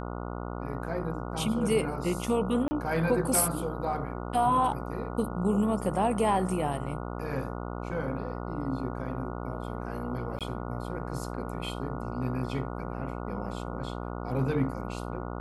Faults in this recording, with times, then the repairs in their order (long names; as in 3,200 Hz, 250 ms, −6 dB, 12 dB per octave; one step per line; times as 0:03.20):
mains buzz 60 Hz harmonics 24 −36 dBFS
0:02.68–0:02.71: drop-out 30 ms
0:10.39–0:10.41: drop-out 17 ms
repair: hum removal 60 Hz, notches 24
repair the gap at 0:02.68, 30 ms
repair the gap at 0:10.39, 17 ms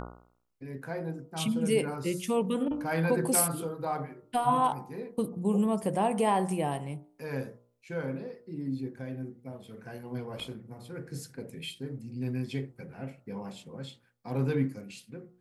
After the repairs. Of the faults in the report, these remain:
none of them is left